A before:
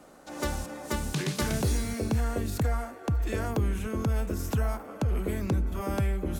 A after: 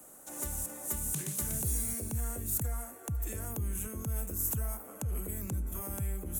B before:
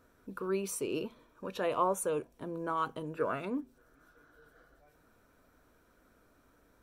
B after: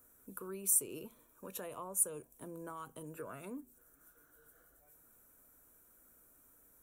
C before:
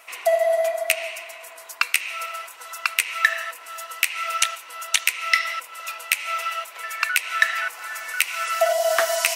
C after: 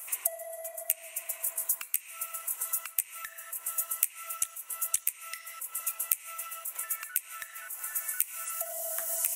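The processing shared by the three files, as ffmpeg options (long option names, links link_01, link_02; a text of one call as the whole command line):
ffmpeg -i in.wav -filter_complex "[0:a]acrossover=split=180[link_01][link_02];[link_02]acompressor=threshold=-37dB:ratio=4[link_03];[link_01][link_03]amix=inputs=2:normalize=0,aexciter=amount=12.1:drive=4.2:freq=6900,volume=-7dB" out.wav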